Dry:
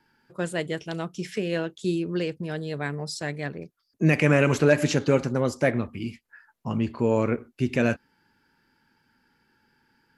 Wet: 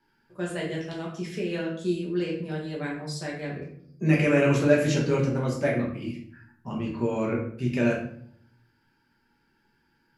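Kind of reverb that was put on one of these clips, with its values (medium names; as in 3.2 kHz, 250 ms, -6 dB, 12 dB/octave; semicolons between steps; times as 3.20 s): simulated room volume 98 m³, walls mixed, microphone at 1.2 m; trim -7.5 dB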